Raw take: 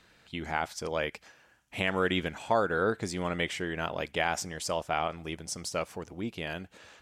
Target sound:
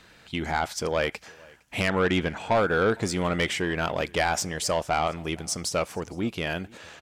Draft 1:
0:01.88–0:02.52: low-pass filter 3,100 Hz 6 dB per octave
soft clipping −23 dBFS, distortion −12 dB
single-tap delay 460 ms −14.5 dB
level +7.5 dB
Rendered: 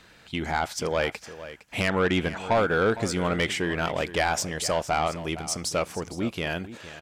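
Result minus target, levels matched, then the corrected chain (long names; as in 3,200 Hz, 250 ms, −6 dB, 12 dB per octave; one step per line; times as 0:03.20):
echo-to-direct +11.5 dB
0:01.88–0:02.52: low-pass filter 3,100 Hz 6 dB per octave
soft clipping −23 dBFS, distortion −12 dB
single-tap delay 460 ms −26 dB
level +7.5 dB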